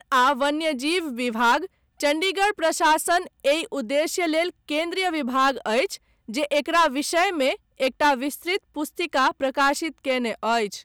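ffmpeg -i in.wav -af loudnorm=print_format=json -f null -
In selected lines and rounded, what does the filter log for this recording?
"input_i" : "-23.2",
"input_tp" : "-13.4",
"input_lra" : "1.8",
"input_thresh" : "-33.2",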